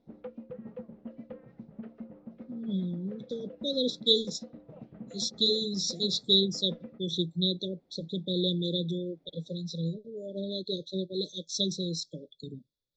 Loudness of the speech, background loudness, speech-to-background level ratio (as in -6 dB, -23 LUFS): -30.5 LUFS, -47.0 LUFS, 16.5 dB